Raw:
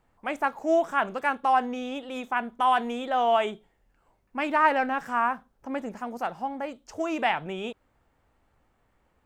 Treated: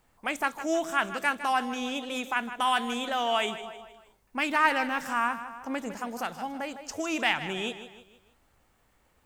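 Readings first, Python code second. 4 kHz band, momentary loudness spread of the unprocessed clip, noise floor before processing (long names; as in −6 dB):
+6.0 dB, 13 LU, −70 dBFS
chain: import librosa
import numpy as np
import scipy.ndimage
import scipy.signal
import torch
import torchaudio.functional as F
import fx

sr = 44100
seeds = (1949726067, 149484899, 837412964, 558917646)

p1 = fx.high_shelf(x, sr, hz=3000.0, db=12.0)
p2 = p1 + fx.echo_feedback(p1, sr, ms=156, feedback_pct=43, wet_db=-13, dry=0)
y = fx.dynamic_eq(p2, sr, hz=670.0, q=0.81, threshold_db=-34.0, ratio=4.0, max_db=-7)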